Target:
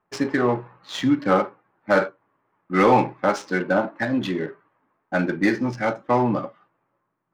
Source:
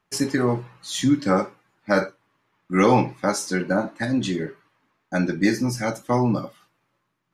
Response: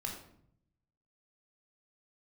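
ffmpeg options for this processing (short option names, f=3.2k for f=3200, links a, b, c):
-filter_complex "[0:a]adynamicsmooth=sensitivity=5:basefreq=1.4k,asplit=2[a][b];[b]highpass=f=720:p=1,volume=12dB,asoftclip=type=tanh:threshold=-4.5dB[c];[a][c]amix=inputs=2:normalize=0,lowpass=f=1.6k:p=1,volume=-6dB"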